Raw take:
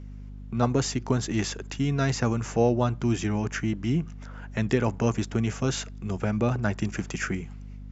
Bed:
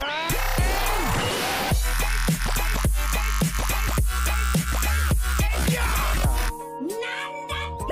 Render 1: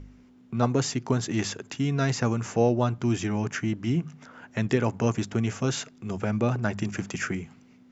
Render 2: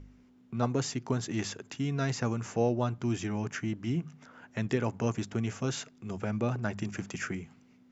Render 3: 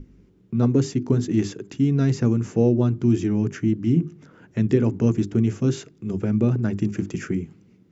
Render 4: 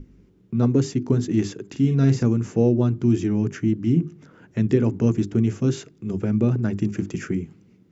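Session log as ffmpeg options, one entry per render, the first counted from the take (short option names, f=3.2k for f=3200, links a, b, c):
-af "bandreject=f=50:t=h:w=4,bandreject=f=100:t=h:w=4,bandreject=f=150:t=h:w=4,bandreject=f=200:t=h:w=4"
-af "volume=-5.5dB"
-af "lowshelf=f=500:t=q:w=1.5:g=11,bandreject=f=50:t=h:w=6,bandreject=f=100:t=h:w=6,bandreject=f=150:t=h:w=6,bandreject=f=200:t=h:w=6,bandreject=f=250:t=h:w=6,bandreject=f=300:t=h:w=6,bandreject=f=350:t=h:w=6,bandreject=f=400:t=h:w=6"
-filter_complex "[0:a]asettb=1/sr,asplit=3[a][b][c];[a]atrim=end=1.704[d];[b]atrim=start=1.7:end=2.23,asetpts=PTS-STARTPTS,afade=t=in:d=0.004:c=qsin,afade=t=out:st=0.526:d=0.004:c=qsin,asplit=2[e][f];[f]adelay=44,volume=-7dB[g];[e][g]amix=inputs=2:normalize=0,atrim=end_sample=23373[h];[c]atrim=start=2.226[i];[d][h]acrossfade=d=0.004:c1=hsin:c2=qsin[j];[j][i]acrossfade=d=0.004:c1=qsin:c2=hsin"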